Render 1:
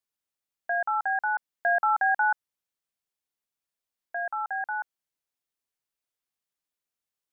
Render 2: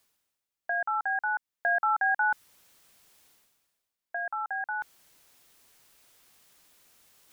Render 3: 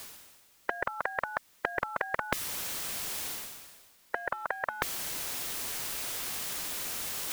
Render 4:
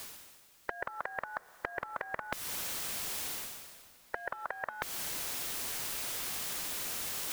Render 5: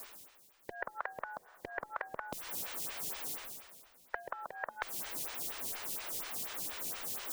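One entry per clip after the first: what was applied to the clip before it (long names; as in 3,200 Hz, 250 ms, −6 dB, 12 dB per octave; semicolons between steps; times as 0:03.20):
dynamic equaliser 610 Hz, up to −5 dB, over −36 dBFS, Q 1; reversed playback; upward compression, threshold −39 dBFS; reversed playback
every bin compressed towards the loudest bin 10 to 1; level +6.5 dB
downward compressor, threshold −33 dBFS, peak gain reduction 9.5 dB; convolution reverb RT60 5.2 s, pre-delay 108 ms, DRR 18.5 dB
phaser with staggered stages 4.2 Hz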